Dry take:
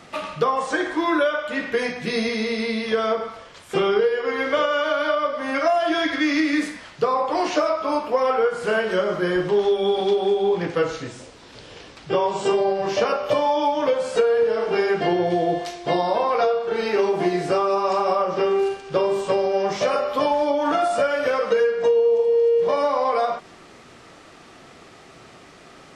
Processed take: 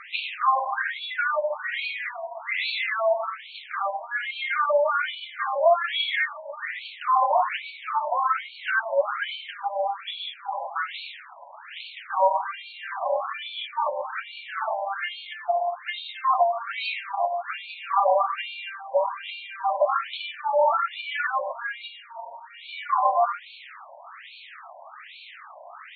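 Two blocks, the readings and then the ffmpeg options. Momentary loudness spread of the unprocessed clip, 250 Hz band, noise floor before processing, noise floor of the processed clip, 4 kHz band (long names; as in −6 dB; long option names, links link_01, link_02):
5 LU, below −40 dB, −47 dBFS, −46 dBFS, −1.0 dB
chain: -af "alimiter=limit=-17dB:level=0:latency=1:release=245,aresample=16000,acrusher=bits=7:mix=0:aa=0.000001,aresample=44100,afftfilt=real='re*between(b*sr/1024,730*pow(3200/730,0.5+0.5*sin(2*PI*1.2*pts/sr))/1.41,730*pow(3200/730,0.5+0.5*sin(2*PI*1.2*pts/sr))*1.41)':imag='im*between(b*sr/1024,730*pow(3200/730,0.5+0.5*sin(2*PI*1.2*pts/sr))/1.41,730*pow(3200/730,0.5+0.5*sin(2*PI*1.2*pts/sr))*1.41)':win_size=1024:overlap=0.75,volume=8.5dB"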